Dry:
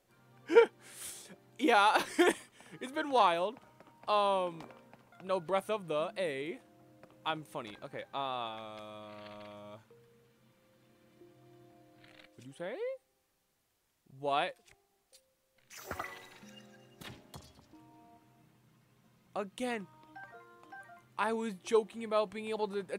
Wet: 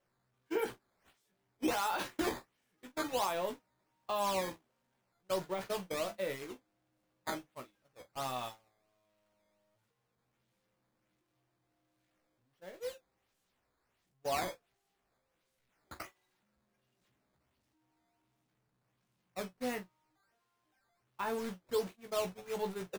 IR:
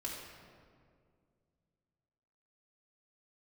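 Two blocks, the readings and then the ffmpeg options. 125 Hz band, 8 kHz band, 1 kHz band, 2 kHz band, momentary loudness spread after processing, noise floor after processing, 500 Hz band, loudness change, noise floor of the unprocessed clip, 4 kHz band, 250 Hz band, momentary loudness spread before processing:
−1.5 dB, +1.5 dB, −6.5 dB, −6.0 dB, 18 LU, −81 dBFS, −5.5 dB, −4.5 dB, −76 dBFS, −4.0 dB, −4.0 dB, 23 LU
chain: -filter_complex "[0:a]aeval=exprs='val(0)+0.5*0.0158*sgn(val(0))':channel_layout=same,acrusher=samples=9:mix=1:aa=0.000001:lfo=1:lforange=14.4:lforate=1.4,alimiter=limit=-20.5dB:level=0:latency=1:release=49,agate=range=-34dB:threshold=-34dB:ratio=16:detection=peak,asplit=2[link_01][link_02];[link_02]aecho=0:1:16|44:0.501|0.2[link_03];[link_01][link_03]amix=inputs=2:normalize=0,volume=-5.5dB"

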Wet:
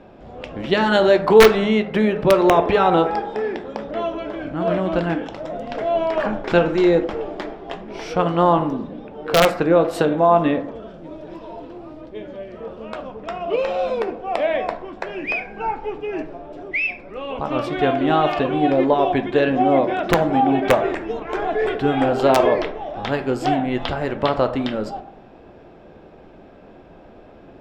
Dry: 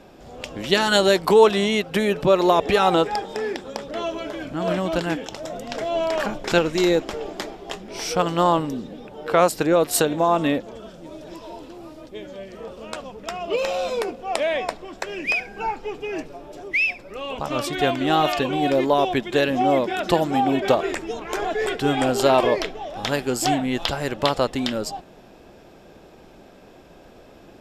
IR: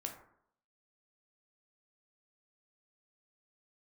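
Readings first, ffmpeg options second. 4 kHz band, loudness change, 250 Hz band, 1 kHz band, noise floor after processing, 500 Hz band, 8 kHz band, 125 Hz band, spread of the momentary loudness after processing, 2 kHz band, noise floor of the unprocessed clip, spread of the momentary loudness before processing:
−3.0 dB, +2.5 dB, +3.5 dB, +2.5 dB, −45 dBFS, +3.0 dB, −8.0 dB, +3.0 dB, 18 LU, +0.5 dB, −48 dBFS, 18 LU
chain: -filter_complex "[0:a]aemphasis=mode=reproduction:type=75kf,aeval=exprs='(mod(2*val(0)+1,2)-1)/2':channel_layout=same,asplit=2[link_01][link_02];[1:a]atrim=start_sample=2205,lowpass=4600[link_03];[link_02][link_03]afir=irnorm=-1:irlink=0,volume=4dB[link_04];[link_01][link_04]amix=inputs=2:normalize=0,volume=-4dB"

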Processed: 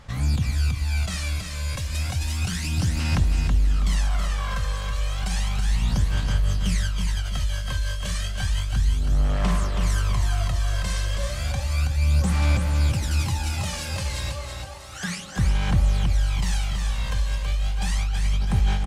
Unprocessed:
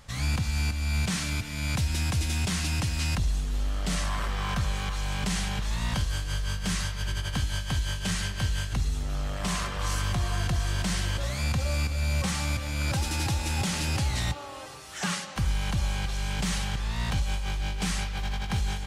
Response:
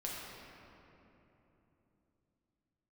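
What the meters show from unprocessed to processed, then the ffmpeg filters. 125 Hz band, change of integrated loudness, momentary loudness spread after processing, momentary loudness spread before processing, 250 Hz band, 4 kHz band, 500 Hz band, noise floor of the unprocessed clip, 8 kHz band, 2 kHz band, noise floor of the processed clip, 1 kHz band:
+5.0 dB, +4.0 dB, 6 LU, 4 LU, +1.5 dB, 0.0 dB, +2.0 dB, −37 dBFS, 0.0 dB, +0.5 dB, −32 dBFS, +0.5 dB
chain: -af "aphaser=in_gain=1:out_gain=1:delay=1.9:decay=0.66:speed=0.32:type=sinusoidal,aecho=1:1:325|650|975|1300:0.531|0.191|0.0688|0.0248,volume=-3.5dB"

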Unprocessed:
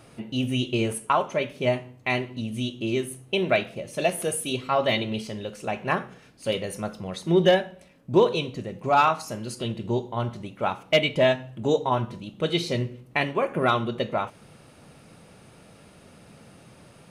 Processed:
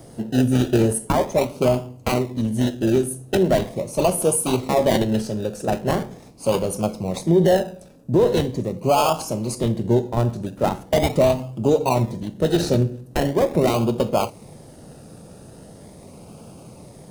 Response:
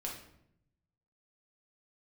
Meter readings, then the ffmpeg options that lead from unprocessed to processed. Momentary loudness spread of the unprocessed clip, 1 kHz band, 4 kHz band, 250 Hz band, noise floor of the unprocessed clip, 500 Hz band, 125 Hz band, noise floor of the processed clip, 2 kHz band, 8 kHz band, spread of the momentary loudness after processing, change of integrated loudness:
12 LU, +1.5 dB, −1.5 dB, +7.5 dB, −52 dBFS, +5.0 dB, +8.0 dB, −44 dBFS, −4.0 dB, +9.0 dB, 7 LU, +4.5 dB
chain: -filter_complex "[0:a]acrossover=split=150|980|4300[link_01][link_02][link_03][link_04];[link_03]acrusher=samples=32:mix=1:aa=0.000001:lfo=1:lforange=19.2:lforate=0.41[link_05];[link_01][link_02][link_05][link_04]amix=inputs=4:normalize=0,alimiter=level_in=15.5dB:limit=-1dB:release=50:level=0:latency=1,volume=-7dB"

